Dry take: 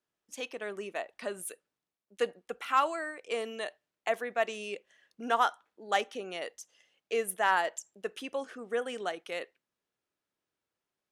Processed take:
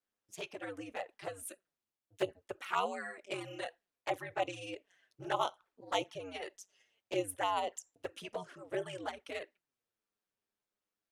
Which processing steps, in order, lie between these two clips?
ring modulator 95 Hz; touch-sensitive flanger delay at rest 9.6 ms, full sweep at -28.5 dBFS; trim +1 dB

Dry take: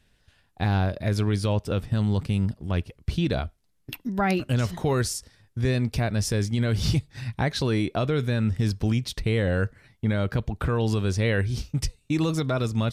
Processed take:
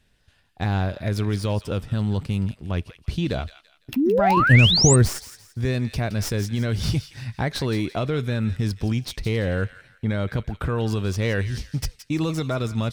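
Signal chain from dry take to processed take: tracing distortion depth 0.053 ms; 4.37–5.09 s: bass shelf 380 Hz +11.5 dB; feedback echo behind a high-pass 169 ms, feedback 33%, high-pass 1.6 kHz, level -11 dB; 3.96–4.96 s: painted sound rise 240–8800 Hz -19 dBFS

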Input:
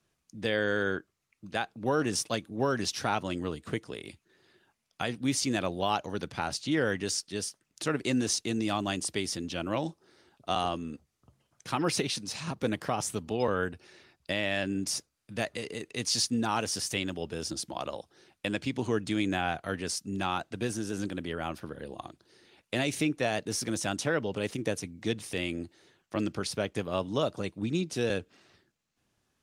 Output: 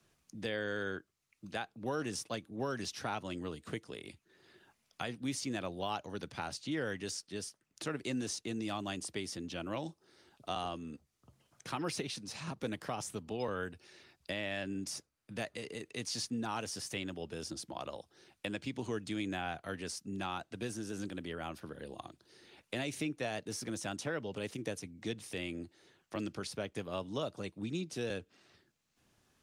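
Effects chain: three bands compressed up and down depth 40%; trim -8 dB

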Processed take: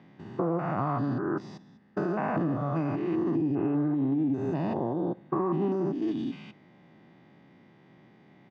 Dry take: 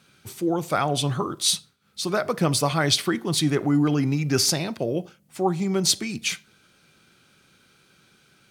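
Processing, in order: spectrogram pixelated in time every 200 ms; de-esser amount 95%; tilt shelf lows +7 dB, about 1.1 kHz; comb 1.1 ms, depth 62%; formant shift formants +5 st; saturation -9 dBFS, distortion -21 dB; compression 6:1, threshold -27 dBFS, peak gain reduction 12.5 dB; band-pass 170–2600 Hz; distance through air 86 m; on a send: reverberation RT60 0.45 s, pre-delay 6 ms, DRR 19 dB; on the sum: trim +3 dB

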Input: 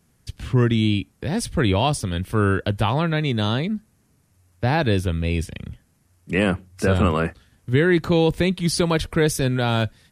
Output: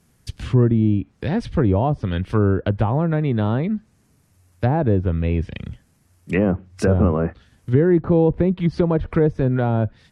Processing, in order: low-pass that closes with the level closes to 760 Hz, closed at -16 dBFS; trim +2.5 dB

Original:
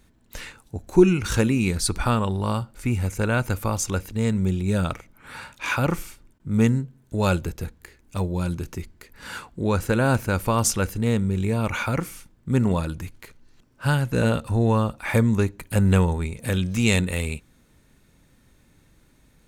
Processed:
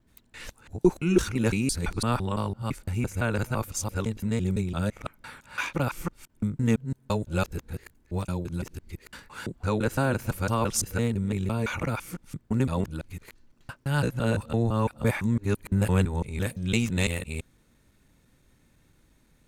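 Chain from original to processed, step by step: time reversed locally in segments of 169 ms; trim -4.5 dB

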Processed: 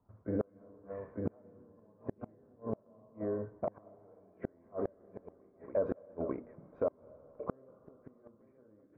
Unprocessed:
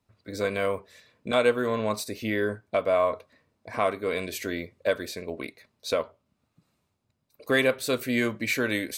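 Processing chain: block-companded coder 5-bit; low-pass that closes with the level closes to 860 Hz, closed at -22 dBFS; 1.65–3.83 s: compression 10:1, threshold -32 dBFS, peak gain reduction 12 dB; peak limiter -23 dBFS, peak gain reduction 10 dB; inverse Chebyshev low-pass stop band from 3.9 kHz, stop band 60 dB; hum notches 60/120/180/240/300/360/420/480/540 Hz; multi-tap echo 47/62/68/74/283/896 ms -8.5/-17.5/-13/-13.5/-19/-6 dB; level rider gain up to 4 dB; inverted gate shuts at -24 dBFS, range -38 dB; on a send at -22 dB: reverberation RT60 3.7 s, pre-delay 187 ms; on the sum: trim +3.5 dB

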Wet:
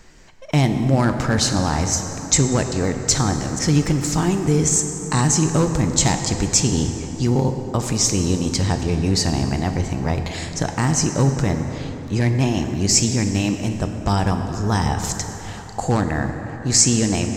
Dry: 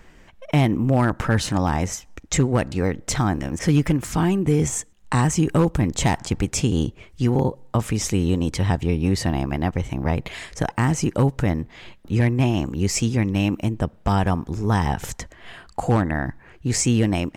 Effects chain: high-order bell 5.6 kHz +9.5 dB 1.2 oct; plate-style reverb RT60 4 s, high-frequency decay 0.5×, DRR 5.5 dB

